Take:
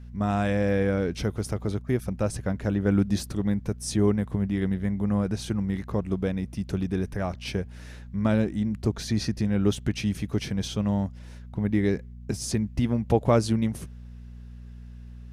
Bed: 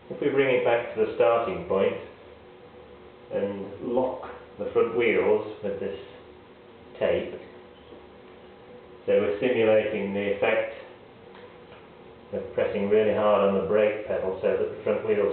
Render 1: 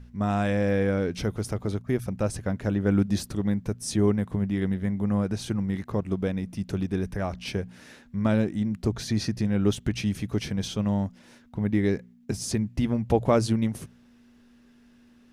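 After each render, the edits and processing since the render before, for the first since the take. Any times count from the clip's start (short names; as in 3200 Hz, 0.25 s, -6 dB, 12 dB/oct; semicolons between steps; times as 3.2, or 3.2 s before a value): de-hum 60 Hz, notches 3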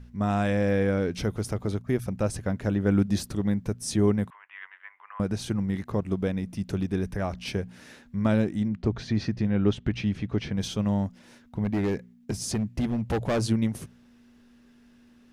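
4.3–5.2 elliptic band-pass 1000–2800 Hz, stop band 70 dB; 8.68–10.57 LPF 3500 Hz; 11.64–13.43 hard clip -22 dBFS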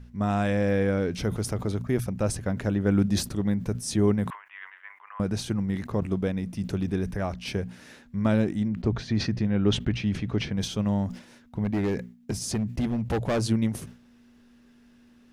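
sustainer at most 130 dB/s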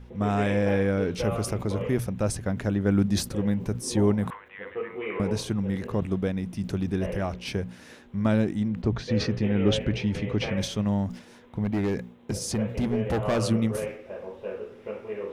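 add bed -10.5 dB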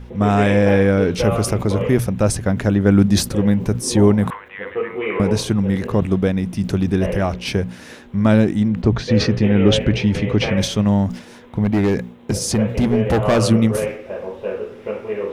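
gain +9.5 dB; limiter -3 dBFS, peak gain reduction 2 dB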